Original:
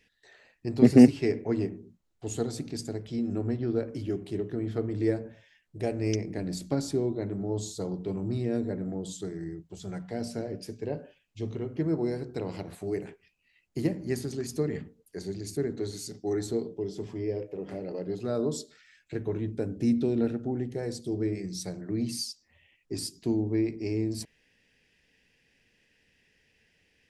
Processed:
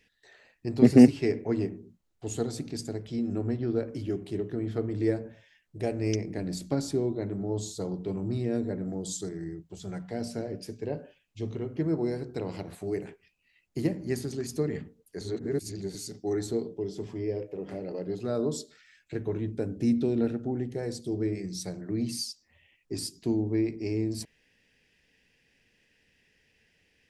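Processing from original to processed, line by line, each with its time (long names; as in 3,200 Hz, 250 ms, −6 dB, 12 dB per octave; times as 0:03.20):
0:08.87–0:09.29: high shelf with overshoot 3,900 Hz +6 dB, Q 1.5
0:15.21–0:15.95: reverse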